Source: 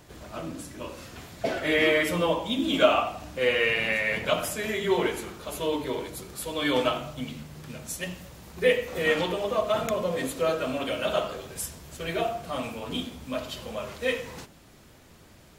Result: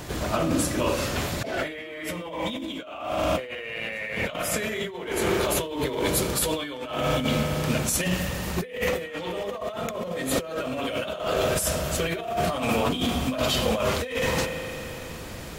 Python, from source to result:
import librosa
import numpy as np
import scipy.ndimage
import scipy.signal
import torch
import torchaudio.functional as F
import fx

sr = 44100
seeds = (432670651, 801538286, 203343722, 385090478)

y = fx.rev_spring(x, sr, rt60_s=3.4, pass_ms=(38,), chirp_ms=80, drr_db=11.5)
y = fx.over_compress(y, sr, threshold_db=-37.0, ratio=-1.0)
y = y * librosa.db_to_amplitude(8.0)